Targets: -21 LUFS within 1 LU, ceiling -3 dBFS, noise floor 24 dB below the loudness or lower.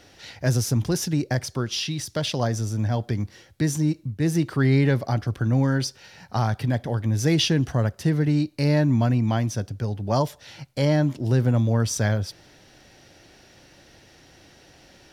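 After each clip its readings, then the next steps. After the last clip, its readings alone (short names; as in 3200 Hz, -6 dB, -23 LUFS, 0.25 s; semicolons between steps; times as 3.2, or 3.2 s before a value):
loudness -23.5 LUFS; peak -9.0 dBFS; loudness target -21.0 LUFS
-> gain +2.5 dB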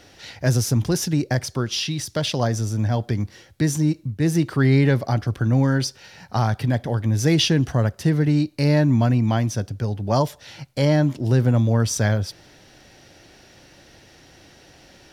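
loudness -21.0 LUFS; peak -6.5 dBFS; noise floor -51 dBFS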